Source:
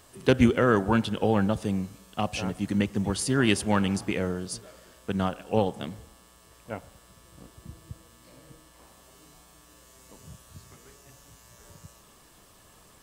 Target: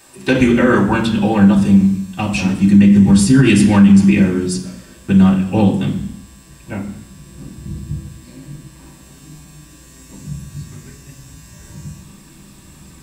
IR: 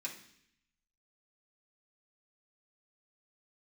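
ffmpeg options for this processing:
-filter_complex "[0:a]asubboost=boost=6:cutoff=230[link_01];[1:a]atrim=start_sample=2205,afade=type=out:start_time=0.38:duration=0.01,atrim=end_sample=17199[link_02];[link_01][link_02]afir=irnorm=-1:irlink=0,alimiter=level_in=12.5dB:limit=-1dB:release=50:level=0:latency=1,volume=-1dB"

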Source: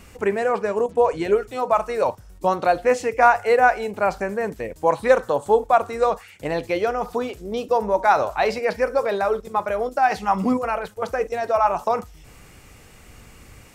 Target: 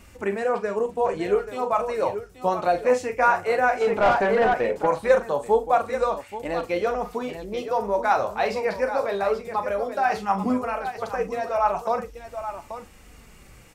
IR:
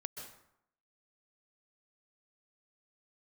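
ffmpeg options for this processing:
-filter_complex "[0:a]aecho=1:1:40|833:0.316|0.316,flanger=delay=3.3:depth=8.6:regen=-46:speed=0.16:shape=sinusoidal,asplit=3[link_01][link_02][link_03];[link_01]afade=type=out:start_time=3.8:duration=0.02[link_04];[link_02]asplit=2[link_05][link_06];[link_06]highpass=frequency=720:poles=1,volume=23dB,asoftclip=type=tanh:threshold=-9dB[link_07];[link_05][link_07]amix=inputs=2:normalize=0,lowpass=frequency=1100:poles=1,volume=-6dB,afade=type=in:start_time=3.8:duration=0.02,afade=type=out:start_time=4.85:duration=0.02[link_08];[link_03]afade=type=in:start_time=4.85:duration=0.02[link_09];[link_04][link_08][link_09]amix=inputs=3:normalize=0"

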